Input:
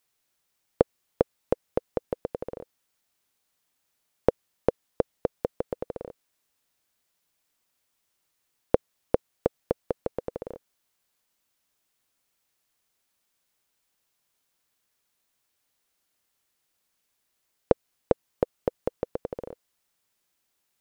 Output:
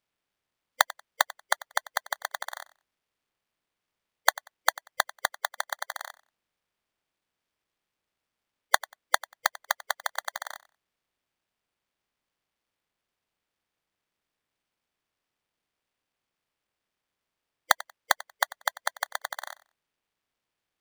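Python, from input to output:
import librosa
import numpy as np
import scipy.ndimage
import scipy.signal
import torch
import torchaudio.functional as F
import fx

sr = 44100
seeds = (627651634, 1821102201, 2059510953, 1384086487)

p1 = fx.spec_quant(x, sr, step_db=30)
p2 = fx.lowpass(p1, sr, hz=1200.0, slope=12, at=(5.36, 6.08))
p3 = p2 + fx.echo_feedback(p2, sr, ms=93, feedback_pct=19, wet_db=-19.0, dry=0)
p4 = np.repeat(scipy.signal.resample_poly(p3, 1, 8), 8)[:len(p3)]
y = p4 * np.sign(np.sin(2.0 * np.pi * 1300.0 * np.arange(len(p4)) / sr))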